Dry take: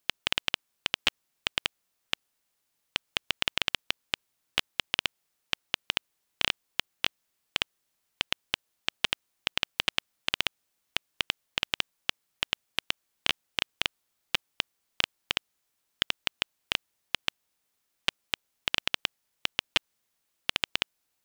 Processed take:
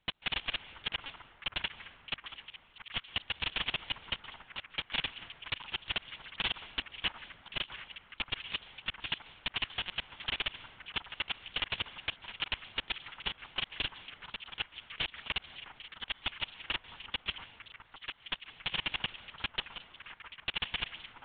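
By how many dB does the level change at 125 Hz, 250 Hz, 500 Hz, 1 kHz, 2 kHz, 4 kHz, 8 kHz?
0.0 dB, -4.5 dB, -6.5 dB, -4.0 dB, -5.0 dB, -5.5 dB, under -35 dB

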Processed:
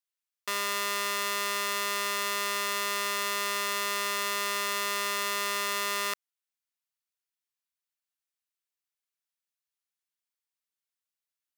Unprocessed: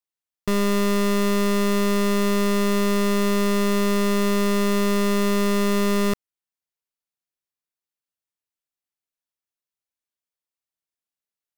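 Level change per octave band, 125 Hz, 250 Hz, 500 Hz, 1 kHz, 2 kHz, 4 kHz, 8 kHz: n/a, -28.5 dB, -15.5 dB, -3.0 dB, -0.5 dB, 0.0 dB, 0.0 dB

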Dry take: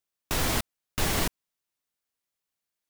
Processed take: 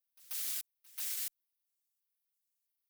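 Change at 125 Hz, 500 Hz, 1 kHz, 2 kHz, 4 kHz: under -40 dB, under -30 dB, -30.5 dB, -20.0 dB, -13.5 dB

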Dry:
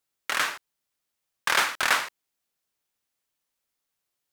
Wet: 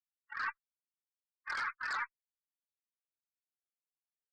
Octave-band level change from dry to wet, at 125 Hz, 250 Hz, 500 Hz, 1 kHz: n/a, under -20 dB, -25.0 dB, -11.5 dB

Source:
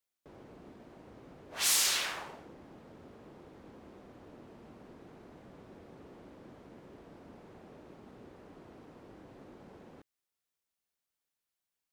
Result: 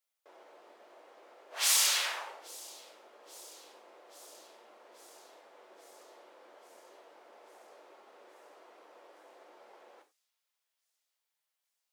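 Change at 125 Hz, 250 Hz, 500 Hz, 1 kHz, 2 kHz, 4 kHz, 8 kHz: under -35 dB, -15.0 dB, -1.5 dB, +1.5 dB, +1.0 dB, +1.5 dB, +1.5 dB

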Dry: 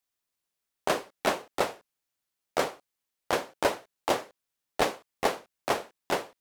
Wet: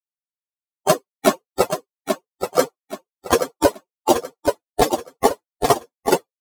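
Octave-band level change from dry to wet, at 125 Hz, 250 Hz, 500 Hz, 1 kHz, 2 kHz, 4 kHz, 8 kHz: +13.0, +13.5, +11.0, +9.0, +3.5, +6.5, +12.0 dB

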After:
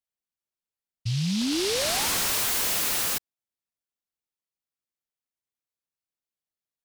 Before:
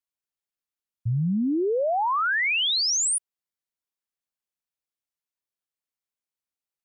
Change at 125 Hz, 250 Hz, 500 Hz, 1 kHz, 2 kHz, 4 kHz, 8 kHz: -2.0, -2.5, -5.0, -8.0, -6.5, -2.0, -0.5 dB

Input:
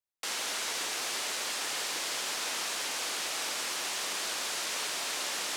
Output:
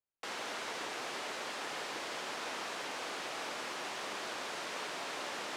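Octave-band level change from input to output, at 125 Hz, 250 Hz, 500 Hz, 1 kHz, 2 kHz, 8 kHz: n/a, +0.5 dB, 0.0 dB, -1.5 dB, -4.5 dB, -14.0 dB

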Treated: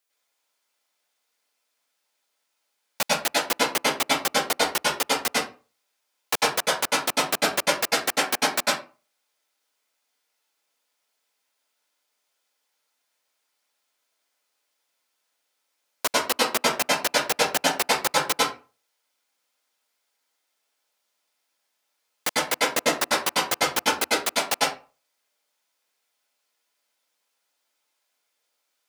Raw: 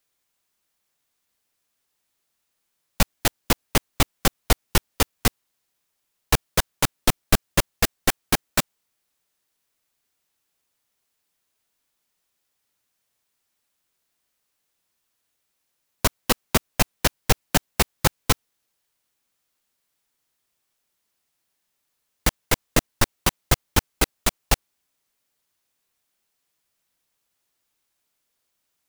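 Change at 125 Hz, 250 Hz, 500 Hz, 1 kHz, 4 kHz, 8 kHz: -17.0, -4.5, +2.5, +3.5, +3.0, 0.0 dB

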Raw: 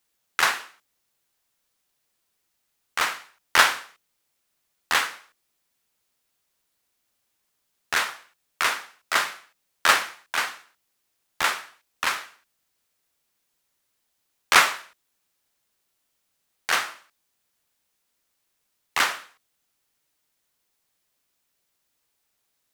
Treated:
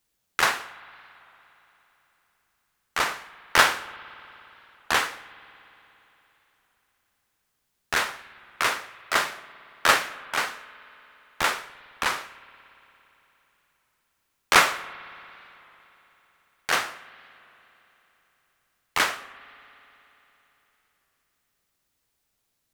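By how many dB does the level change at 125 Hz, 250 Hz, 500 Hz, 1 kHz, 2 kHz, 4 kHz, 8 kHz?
n/a, +4.0 dB, +3.5 dB, 0.0 dB, -1.0 dB, -1.5 dB, -1.5 dB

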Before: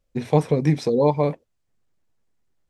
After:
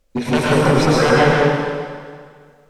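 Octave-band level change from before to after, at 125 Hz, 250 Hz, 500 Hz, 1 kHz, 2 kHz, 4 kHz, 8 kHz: +4.0 dB, +6.0 dB, +6.0 dB, +10.0 dB, +22.0 dB, +16.5 dB, n/a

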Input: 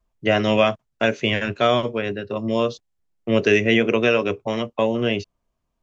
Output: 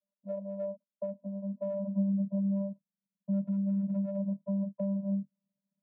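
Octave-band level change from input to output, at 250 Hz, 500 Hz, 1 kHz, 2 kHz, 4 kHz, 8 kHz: -6.5 dB, -18.0 dB, under -30 dB, under -40 dB, under -40 dB, n/a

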